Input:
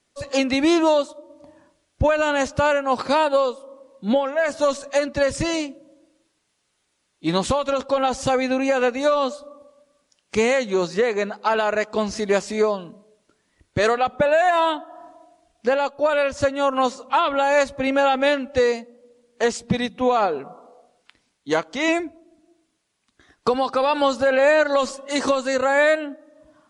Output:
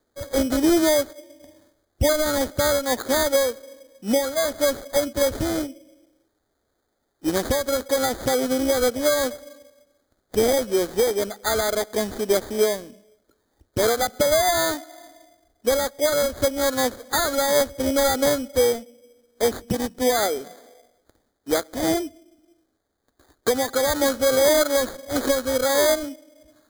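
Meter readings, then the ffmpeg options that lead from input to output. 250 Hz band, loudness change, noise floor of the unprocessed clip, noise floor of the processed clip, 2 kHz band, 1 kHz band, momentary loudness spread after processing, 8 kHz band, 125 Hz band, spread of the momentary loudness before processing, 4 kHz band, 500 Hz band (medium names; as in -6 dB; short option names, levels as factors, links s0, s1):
-1.0 dB, -1.0 dB, -71 dBFS, -73 dBFS, -4.5 dB, -6.0 dB, 8 LU, +9.0 dB, -1.5 dB, 7 LU, +2.5 dB, -1.0 dB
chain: -af "acrusher=samples=16:mix=1:aa=0.000001,equalizer=f=160:t=o:w=0.67:g=-11,equalizer=f=1000:t=o:w=0.67:g=-10,equalizer=f=2500:t=o:w=0.67:g=-12,volume=1.19"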